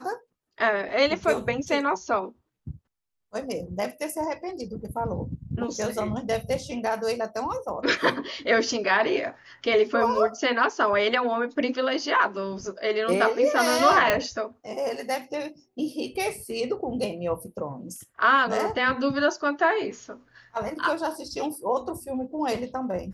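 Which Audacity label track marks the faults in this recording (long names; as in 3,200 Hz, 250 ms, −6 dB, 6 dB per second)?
14.100000	14.100000	click −6 dBFS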